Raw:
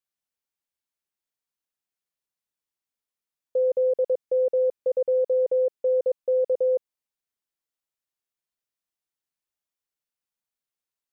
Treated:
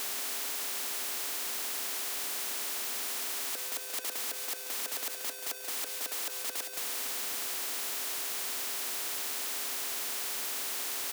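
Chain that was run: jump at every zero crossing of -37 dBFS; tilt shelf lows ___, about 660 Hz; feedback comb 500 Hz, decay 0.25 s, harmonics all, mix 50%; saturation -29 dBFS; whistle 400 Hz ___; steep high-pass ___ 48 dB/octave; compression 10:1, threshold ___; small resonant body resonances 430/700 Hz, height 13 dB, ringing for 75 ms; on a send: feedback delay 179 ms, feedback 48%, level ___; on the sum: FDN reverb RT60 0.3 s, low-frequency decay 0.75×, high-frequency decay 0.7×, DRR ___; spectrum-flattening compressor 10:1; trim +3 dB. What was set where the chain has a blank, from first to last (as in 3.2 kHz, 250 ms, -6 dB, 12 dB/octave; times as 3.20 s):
-6 dB, -55 dBFS, 240 Hz, -33 dBFS, -12.5 dB, 17 dB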